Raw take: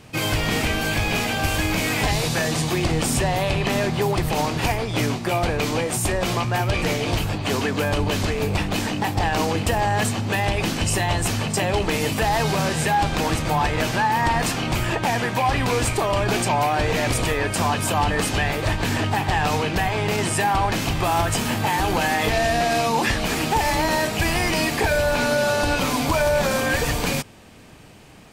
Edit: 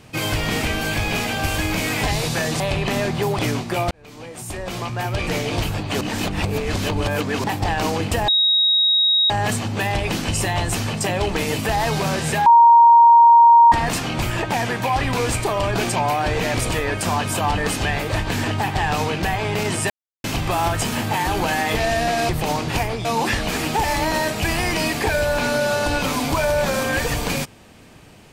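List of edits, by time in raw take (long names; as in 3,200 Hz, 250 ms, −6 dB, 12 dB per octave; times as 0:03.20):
0:02.60–0:03.39: remove
0:04.18–0:04.94: move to 0:22.82
0:05.46–0:07.00: fade in
0:07.56–0:08.99: reverse
0:09.83: insert tone 3,790 Hz −13.5 dBFS 1.02 s
0:12.99–0:14.25: beep over 935 Hz −6.5 dBFS
0:20.43–0:20.77: silence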